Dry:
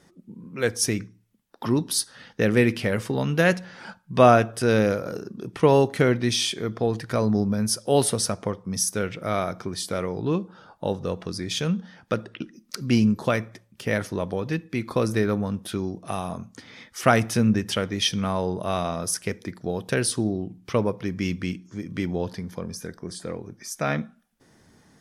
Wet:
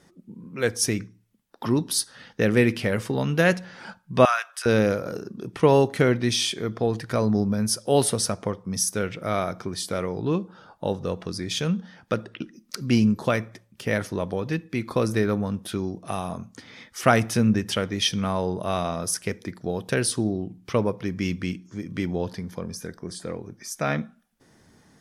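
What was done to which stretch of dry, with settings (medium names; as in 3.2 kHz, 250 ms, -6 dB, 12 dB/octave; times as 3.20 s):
4.25–4.66 s: high-pass 1.1 kHz 24 dB/octave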